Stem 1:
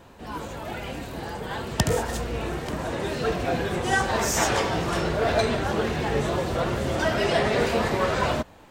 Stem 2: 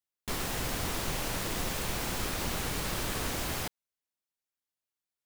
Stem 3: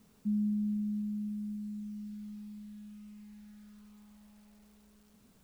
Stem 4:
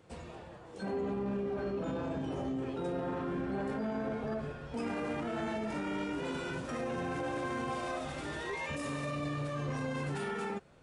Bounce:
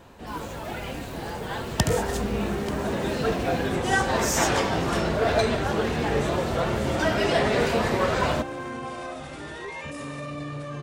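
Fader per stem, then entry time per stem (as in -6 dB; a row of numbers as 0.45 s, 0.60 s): 0.0 dB, -16.0 dB, -3.5 dB, +2.0 dB; 0.00 s, 0.00 s, 1.95 s, 1.15 s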